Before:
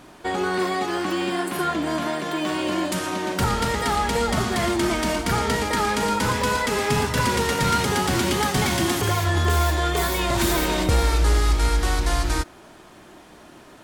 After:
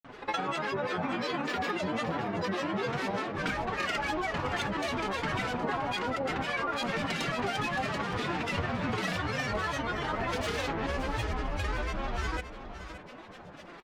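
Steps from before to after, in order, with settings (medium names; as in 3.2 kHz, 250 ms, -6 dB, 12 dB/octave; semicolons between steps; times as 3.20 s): low-pass 2.1 kHz 12 dB/octave; tilt shelf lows -5 dB, about 1.5 kHz; comb 6.6 ms, depth 68%; compression 10:1, threshold -29 dBFS, peak gain reduction 12.5 dB; granulator, pitch spread up and down by 12 st; on a send: delay 569 ms -11.5 dB; on the sum: trim +1.5 dB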